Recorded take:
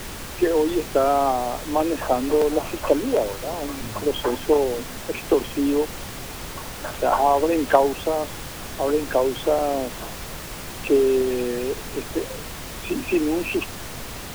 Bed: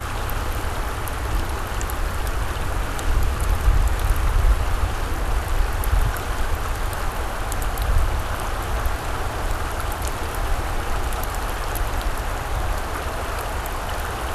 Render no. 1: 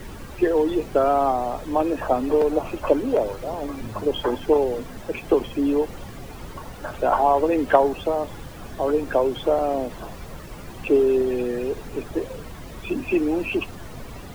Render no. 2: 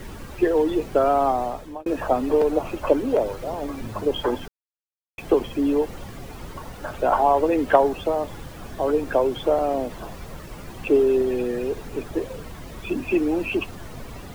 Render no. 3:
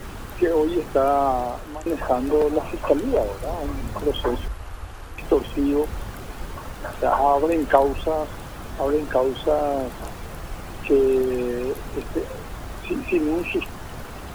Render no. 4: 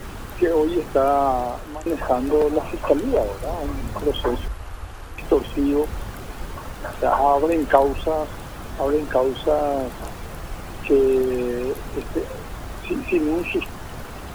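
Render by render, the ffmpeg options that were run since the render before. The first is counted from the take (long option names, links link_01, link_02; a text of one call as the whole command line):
ffmpeg -i in.wav -af "afftdn=noise_reduction=12:noise_floor=-35" out.wav
ffmpeg -i in.wav -filter_complex "[0:a]asplit=4[link_01][link_02][link_03][link_04];[link_01]atrim=end=1.86,asetpts=PTS-STARTPTS,afade=type=out:start_time=1.43:duration=0.43[link_05];[link_02]atrim=start=1.86:end=4.48,asetpts=PTS-STARTPTS,afade=type=in:duration=0.004:curve=hsin,afade=type=out:start_time=2.616:duration=0.004:curve=hsin[link_06];[link_03]atrim=start=4.48:end=5.18,asetpts=PTS-STARTPTS,volume=0[link_07];[link_04]atrim=start=5.18,asetpts=PTS-STARTPTS,afade=type=in:duration=0.004:curve=hsin[link_08];[link_05][link_06][link_07][link_08]concat=n=4:v=0:a=1" out.wav
ffmpeg -i in.wav -i bed.wav -filter_complex "[1:a]volume=-13.5dB[link_01];[0:a][link_01]amix=inputs=2:normalize=0" out.wav
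ffmpeg -i in.wav -af "volume=1dB" out.wav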